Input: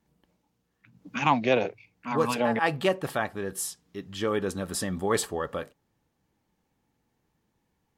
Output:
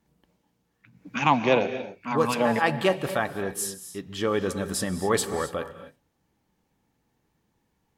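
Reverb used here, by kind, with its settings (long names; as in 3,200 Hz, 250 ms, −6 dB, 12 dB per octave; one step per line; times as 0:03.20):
reverb whose tail is shaped and stops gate 290 ms rising, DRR 11 dB
level +2 dB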